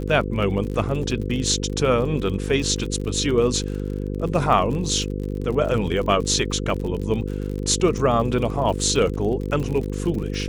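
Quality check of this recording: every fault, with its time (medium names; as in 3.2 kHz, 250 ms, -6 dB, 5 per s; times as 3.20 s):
buzz 50 Hz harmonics 10 -27 dBFS
crackle 51 per s -29 dBFS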